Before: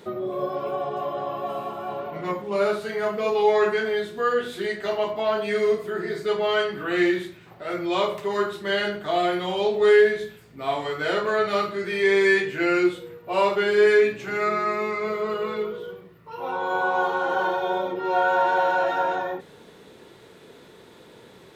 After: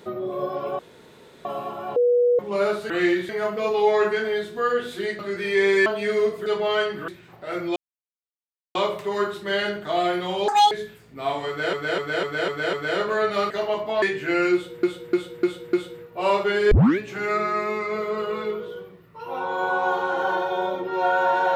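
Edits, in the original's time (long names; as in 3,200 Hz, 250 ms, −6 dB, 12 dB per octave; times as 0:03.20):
0:00.79–0:01.45: fill with room tone
0:01.96–0:02.39: beep over 486 Hz −15 dBFS
0:04.80–0:05.32: swap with 0:11.67–0:12.34
0:05.92–0:06.25: remove
0:06.87–0:07.26: move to 0:02.90
0:07.94: splice in silence 0.99 s
0:09.67–0:10.13: play speed 198%
0:10.90–0:11.15: repeat, 6 plays
0:12.85–0:13.15: repeat, 5 plays
0:13.83: tape start 0.27 s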